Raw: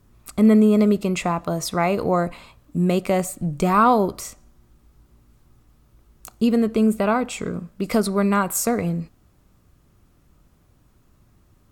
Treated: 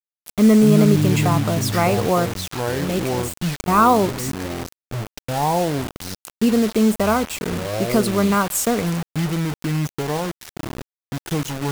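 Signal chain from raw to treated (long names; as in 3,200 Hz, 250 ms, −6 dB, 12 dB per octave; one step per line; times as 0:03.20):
0:02.26–0:03.68: volume swells 328 ms
delay with pitch and tempo change per echo 84 ms, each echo −6 semitones, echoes 2, each echo −6 dB
bit reduction 5 bits
level +1.5 dB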